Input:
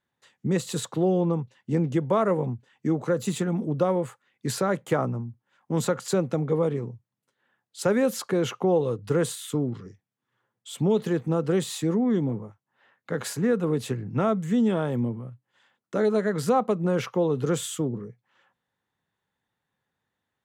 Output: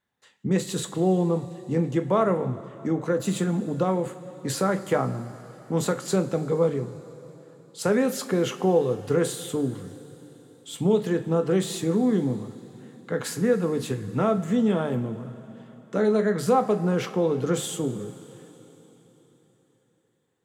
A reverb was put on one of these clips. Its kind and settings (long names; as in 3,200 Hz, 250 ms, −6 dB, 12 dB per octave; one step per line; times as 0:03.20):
coupled-rooms reverb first 0.27 s, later 4.1 s, from −18 dB, DRR 6.5 dB